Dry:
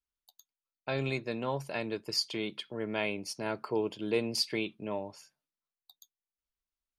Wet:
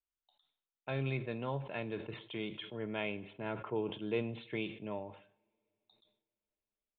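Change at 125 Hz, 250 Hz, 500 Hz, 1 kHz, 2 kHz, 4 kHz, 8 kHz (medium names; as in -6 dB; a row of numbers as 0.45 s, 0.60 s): 0.0 dB, -4.0 dB, -5.0 dB, -5.0 dB, -5.0 dB, -12.0 dB, under -35 dB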